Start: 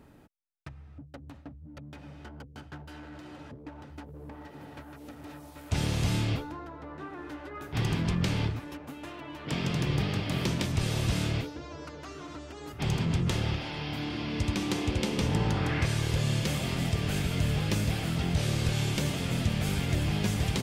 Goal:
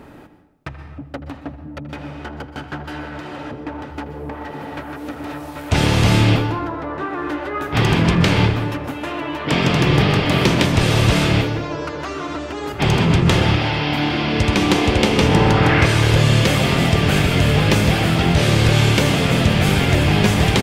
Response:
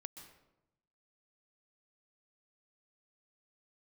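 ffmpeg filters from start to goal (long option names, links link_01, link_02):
-filter_complex "[0:a]acontrast=64,bass=frequency=250:gain=-6,treble=frequency=4000:gain=-7,asplit=2[link_01][link_02];[link_02]adelay=80,highpass=300,lowpass=3400,asoftclip=type=hard:threshold=-21.5dB,volume=-14dB[link_03];[link_01][link_03]amix=inputs=2:normalize=0,asplit=2[link_04][link_05];[1:a]atrim=start_sample=2205[link_06];[link_05][link_06]afir=irnorm=-1:irlink=0,volume=10dB[link_07];[link_04][link_07]amix=inputs=2:normalize=0,volume=2dB"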